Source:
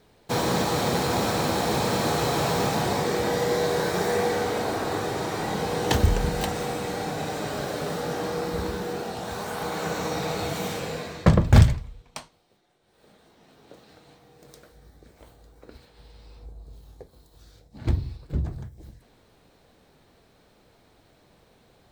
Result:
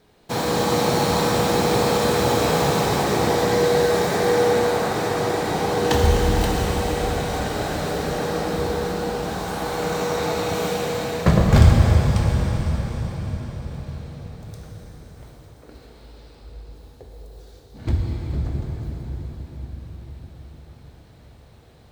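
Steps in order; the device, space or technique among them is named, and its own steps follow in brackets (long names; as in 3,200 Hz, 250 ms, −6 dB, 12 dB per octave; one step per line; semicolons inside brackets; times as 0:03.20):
cathedral (convolution reverb RT60 5.9 s, pre-delay 12 ms, DRR −2.5 dB)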